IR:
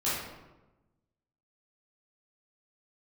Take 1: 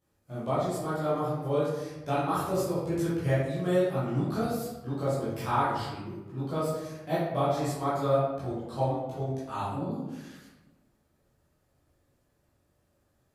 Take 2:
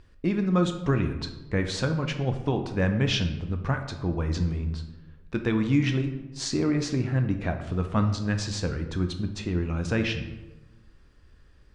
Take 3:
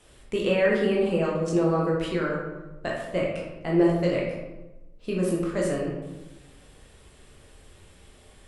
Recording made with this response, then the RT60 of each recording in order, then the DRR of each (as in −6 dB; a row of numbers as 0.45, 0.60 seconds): 1; 1.1, 1.1, 1.1 seconds; −11.0, 6.0, −3.5 decibels